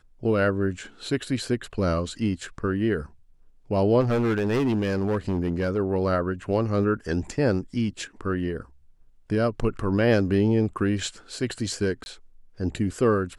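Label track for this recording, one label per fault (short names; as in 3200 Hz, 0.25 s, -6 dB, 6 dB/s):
4.000000	5.780000	clipped -20 dBFS
12.040000	12.060000	gap 21 ms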